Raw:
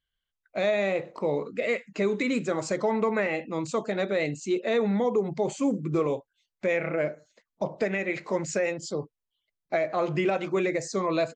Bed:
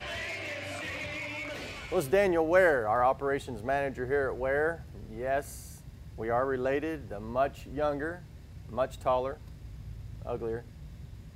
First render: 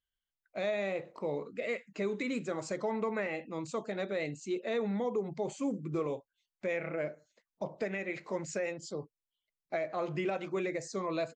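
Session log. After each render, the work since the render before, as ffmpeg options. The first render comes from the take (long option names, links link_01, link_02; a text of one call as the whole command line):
ffmpeg -i in.wav -af "volume=-8dB" out.wav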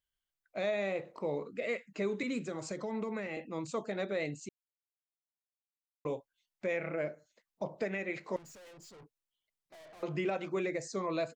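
ffmpeg -i in.wav -filter_complex "[0:a]asettb=1/sr,asplit=3[link_01][link_02][link_03];[link_01]atrim=end=2.234[link_04];[link_02]atrim=start=2.23:end=3.37,asetpts=PTS-STARTPTS,afade=type=in:duration=0.004:curve=qsin,afade=type=out:start_time=1.136:duration=0.004:curve=qsin,acrossover=split=340|3000[link_05][link_06][link_07];[link_06]acompressor=threshold=-39dB:ratio=6:attack=3.2:release=140:knee=2.83:detection=peak[link_08];[link_05][link_08][link_07]amix=inputs=3:normalize=0[link_09];[link_03]atrim=start=3.366[link_10];[link_04][link_09]acrossfade=duration=0.004:curve1=hsin:curve2=qsin[link_11];[link_11][link_10]acrossfade=duration=0.004:curve1=qsin:curve2=hsin,asettb=1/sr,asplit=3[link_12][link_13][link_14];[link_12]atrim=end=8.364[link_15];[link_13]atrim=start=8.36:end=10.03,asetpts=PTS-STARTPTS,afade=type=in:duration=0.004:curve=qsin,afade=type=out:start_time=1.666:duration=0.004:curve=qsin,aeval=exprs='(tanh(447*val(0)+0.15)-tanh(0.15))/447':channel_layout=same[link_16];[link_14]atrim=start=10.026[link_17];[link_15][link_16]acrossfade=duration=0.004:curve1=hsin:curve2=qsin[link_18];[link_18][link_17]acrossfade=duration=0.004:curve1=qsin:curve2=hsin,asplit=3[link_19][link_20][link_21];[link_19]atrim=end=4.49,asetpts=PTS-STARTPTS,afade=type=out:start_time=4.486:duration=0.004:curve=hsin[link_22];[link_20]atrim=start=4.49:end=6.05,asetpts=PTS-STARTPTS,volume=0[link_23];[link_21]atrim=start=6.05,asetpts=PTS-STARTPTS,afade=type=in:duration=0.004:curve=hsin[link_24];[link_22][link_23][link_24]concat=n=3:v=0:a=1" out.wav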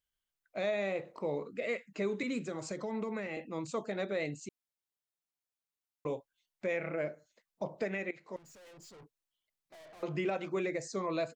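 ffmpeg -i in.wav -filter_complex "[0:a]asplit=2[link_01][link_02];[link_01]atrim=end=8.11,asetpts=PTS-STARTPTS,afade=type=out:start_time=8.106:duration=0.004:curve=hsin:silence=0.16788[link_03];[link_02]atrim=start=8.11,asetpts=PTS-STARTPTS,afade=type=in:duration=0.7:silence=0.16788[link_04];[link_03][link_04]concat=n=2:v=0:a=1" out.wav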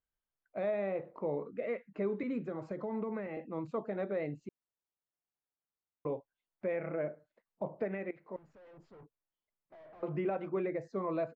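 ffmpeg -i in.wav -af "lowpass=1400" out.wav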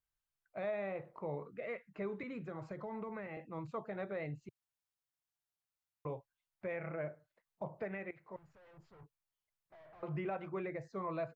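ffmpeg -i in.wav -af "equalizer=frequency=125:width_type=o:width=1:gain=5,equalizer=frequency=250:width_type=o:width=1:gain=-10,equalizer=frequency=500:width_type=o:width=1:gain=-5" out.wav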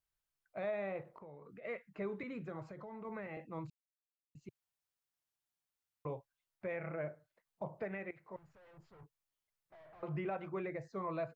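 ffmpeg -i in.wav -filter_complex "[0:a]asettb=1/sr,asplit=3[link_01][link_02][link_03];[link_01]atrim=end=1.024[link_04];[link_02]atrim=start=1.02:end=1.65,asetpts=PTS-STARTPTS,afade=type=in:duration=0.004:curve=qsin,afade=type=out:start_time=0.626:duration=0.004:curve=qsin,acompressor=threshold=-50dB:ratio=6:attack=3.2:release=140:knee=1:detection=peak[link_05];[link_03]atrim=start=1.646[link_06];[link_04][link_05]acrossfade=duration=0.004:curve1=hsin:curve2=qsin[link_07];[link_07][link_06]acrossfade=duration=0.004:curve1=qsin:curve2=hsin,asettb=1/sr,asplit=3[link_08][link_09][link_10];[link_08]atrim=end=2.624[link_11];[link_09]atrim=start=2.62:end=3.05,asetpts=PTS-STARTPTS,afade=type=in:duration=0.004:curve=qsin,afade=type=out:start_time=0.426:duration=0.004:curve=qsin,acompressor=threshold=-49dB:ratio=2:attack=3.2:release=140:knee=1:detection=peak[link_12];[link_10]atrim=start=3.046[link_13];[link_11][link_12]acrossfade=duration=0.004:curve1=hsin:curve2=qsin[link_14];[link_14][link_13]acrossfade=duration=0.004:curve1=qsin:curve2=hsin,asplit=3[link_15][link_16][link_17];[link_15]atrim=end=3.7,asetpts=PTS-STARTPTS,afade=type=out:start_time=3.696:duration=0.004:curve=hsin[link_18];[link_16]atrim=start=3.7:end=4.35,asetpts=PTS-STARTPTS,volume=0[link_19];[link_17]atrim=start=4.35,asetpts=PTS-STARTPTS,afade=type=in:duration=0.004:curve=hsin[link_20];[link_18][link_19][link_20]concat=n=3:v=0:a=1" out.wav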